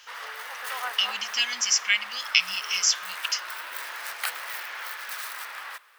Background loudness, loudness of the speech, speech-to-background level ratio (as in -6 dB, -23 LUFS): -34.5 LUFS, -24.5 LUFS, 10.0 dB